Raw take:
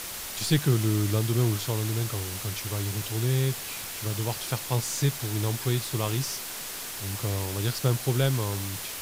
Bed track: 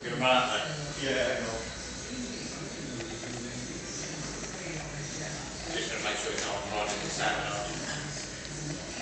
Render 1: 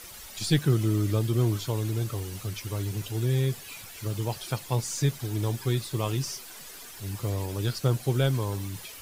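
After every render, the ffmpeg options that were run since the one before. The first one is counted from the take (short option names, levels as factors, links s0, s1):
-af "afftdn=nr=11:nf=-37"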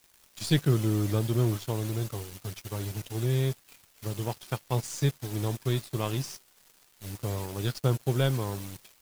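-af "acrusher=bits=7:mix=0:aa=0.000001,aeval=exprs='sgn(val(0))*max(abs(val(0))-0.0126,0)':c=same"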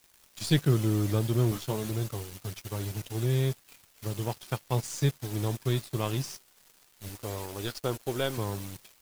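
-filter_complex "[0:a]asettb=1/sr,asplit=3[s0][s1][s2];[s0]atrim=end=1.504[s3];[s1]atrim=start=1.5:end=1.91,asetpts=PTS-STARTPTS,afade=t=in:d=0.004:c=qsin,afade=t=out:st=0.406:d=0.004:c=qsin,asplit=2[s4][s5];[s5]adelay=14,volume=0.531[s6];[s4][s6]amix=inputs=2:normalize=0,atrim=end_sample=18081[s7];[s2]atrim=start=1.906[s8];[s3][s7]acrossfade=d=0.004:c1=hsin:c2=qsin[s9];[s9][s8]acrossfade=d=0.004:c1=qsin:c2=hsin,asettb=1/sr,asplit=3[s10][s11][s12];[s10]atrim=end=7.084[s13];[s11]atrim=start=7.08:end=8.38,asetpts=PTS-STARTPTS,afade=t=in:d=0.004:c=qsin,afade=t=out:st=1.296:d=0.004:c=qsin,equalizer=f=140:w=1.5:g=-13[s14];[s12]atrim=start=8.376[s15];[s13][s14]acrossfade=d=0.004:c1=hsin:c2=qsin[s16];[s16][s15]acrossfade=d=0.004:c1=qsin:c2=hsin"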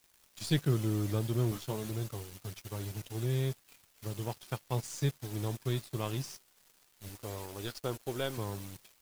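-af "volume=0.562"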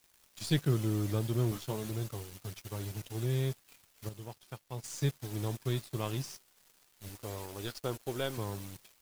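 -filter_complex "[0:a]asplit=3[s0][s1][s2];[s0]atrim=end=4.092[s3];[s1]atrim=start=4.088:end=4.842,asetpts=PTS-STARTPTS,volume=0.398[s4];[s2]atrim=start=4.838[s5];[s3][s4]acrossfade=d=0.004:c1=hsin:c2=hsin[s6];[s6][s5]acrossfade=d=0.004:c1=hsin:c2=hsin"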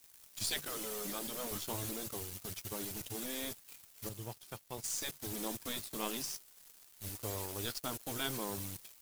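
-af "afftfilt=real='re*lt(hypot(re,im),0.0891)':imag='im*lt(hypot(re,im),0.0891)':win_size=1024:overlap=0.75,highshelf=f=5600:g=9"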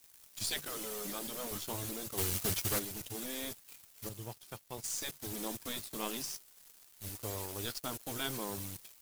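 -filter_complex "[0:a]asplit=3[s0][s1][s2];[s0]afade=t=out:st=2.17:d=0.02[s3];[s1]aeval=exprs='0.0447*sin(PI/2*3.16*val(0)/0.0447)':c=same,afade=t=in:st=2.17:d=0.02,afade=t=out:st=2.78:d=0.02[s4];[s2]afade=t=in:st=2.78:d=0.02[s5];[s3][s4][s5]amix=inputs=3:normalize=0"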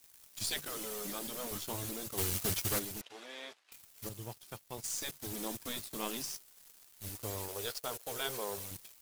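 -filter_complex "[0:a]asettb=1/sr,asplit=3[s0][s1][s2];[s0]atrim=end=3.014[s3];[s1]atrim=start=3.01:end=3.72,asetpts=PTS-STARTPTS,afade=t=in:d=0.004:c=qsin,afade=t=out:st=0.706:d=0.004:c=qsin,highpass=580,lowpass=3300[s4];[s2]atrim=start=3.716[s5];[s3][s4]acrossfade=d=0.004:c1=hsin:c2=qsin[s6];[s6][s5]acrossfade=d=0.004:c1=qsin:c2=hsin,asettb=1/sr,asplit=3[s7][s8][s9];[s7]atrim=end=7.484[s10];[s8]atrim=start=7.48:end=8.71,asetpts=PTS-STARTPTS,afade=t=in:d=0.004:c=qsin,afade=t=out:st=1.226:d=0.004:c=qsin,lowshelf=f=360:t=q:w=3:g=-6[s11];[s9]atrim=start=8.706[s12];[s10][s11]acrossfade=d=0.004:c1=hsin:c2=qsin[s13];[s13][s12]acrossfade=d=0.004:c1=qsin:c2=hsin"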